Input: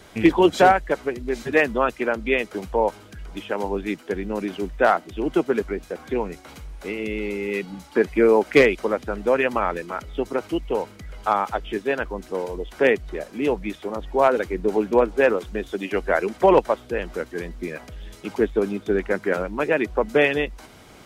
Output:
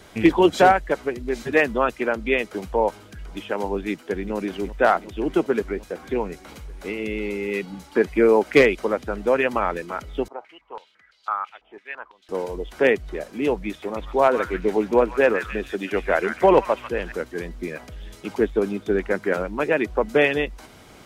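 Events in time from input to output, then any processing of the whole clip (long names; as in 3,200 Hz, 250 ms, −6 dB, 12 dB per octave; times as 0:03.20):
0:03.90–0:04.35: delay throw 370 ms, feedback 80%, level −14 dB
0:10.28–0:12.29: band-pass on a step sequencer 6 Hz 810–4,300 Hz
0:13.68–0:17.12: echo through a band-pass that steps 143 ms, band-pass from 1,700 Hz, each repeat 0.7 octaves, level −4 dB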